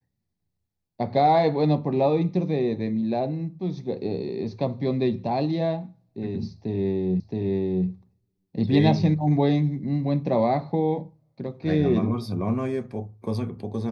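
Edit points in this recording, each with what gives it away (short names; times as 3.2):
7.2 repeat of the last 0.67 s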